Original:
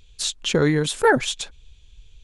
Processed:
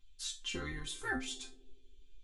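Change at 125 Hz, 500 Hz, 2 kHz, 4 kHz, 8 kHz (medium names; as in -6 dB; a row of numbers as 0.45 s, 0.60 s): -23.0 dB, -27.5 dB, -15.5 dB, -15.0 dB, -15.0 dB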